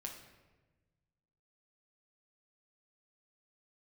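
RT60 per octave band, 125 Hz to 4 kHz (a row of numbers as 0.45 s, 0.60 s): 2.1 s, 1.6 s, 1.4 s, 1.1 s, 1.1 s, 0.80 s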